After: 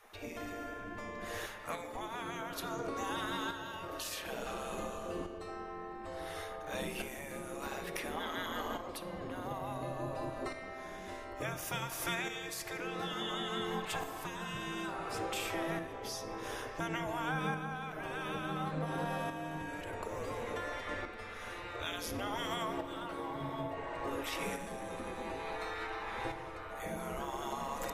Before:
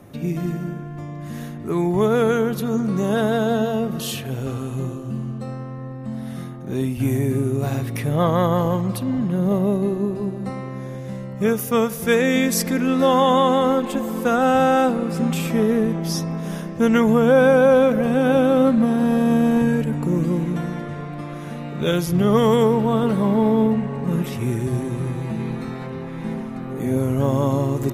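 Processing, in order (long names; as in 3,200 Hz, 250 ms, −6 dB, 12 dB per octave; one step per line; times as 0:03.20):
0:01.46–0:01.96: high-pass filter 460 Hz 6 dB per octave
gate on every frequency bin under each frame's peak −15 dB weak
high-shelf EQ 7,600 Hz −7.5 dB
downward compressor 6 to 1, threshold −37 dBFS, peak gain reduction 15 dB
shaped tremolo saw up 0.57 Hz, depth 55%
rectangular room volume 1,500 cubic metres, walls mixed, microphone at 0.58 metres
level +3 dB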